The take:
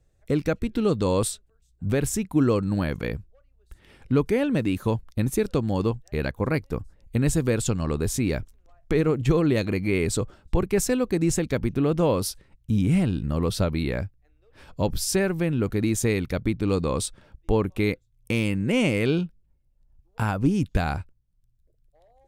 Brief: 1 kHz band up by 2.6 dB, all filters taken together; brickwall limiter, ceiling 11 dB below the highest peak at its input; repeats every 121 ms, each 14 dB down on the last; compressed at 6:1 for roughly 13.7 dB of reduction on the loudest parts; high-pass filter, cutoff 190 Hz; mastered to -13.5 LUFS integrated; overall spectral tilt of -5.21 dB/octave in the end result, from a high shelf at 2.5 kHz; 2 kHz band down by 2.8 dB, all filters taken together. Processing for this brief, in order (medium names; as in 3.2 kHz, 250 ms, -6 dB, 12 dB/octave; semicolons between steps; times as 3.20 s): high-pass 190 Hz; peaking EQ 1 kHz +4.5 dB; peaking EQ 2 kHz -3 dB; treble shelf 2.5 kHz -3.5 dB; compression 6:1, threshold -33 dBFS; peak limiter -29 dBFS; feedback delay 121 ms, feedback 20%, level -14 dB; trim +26 dB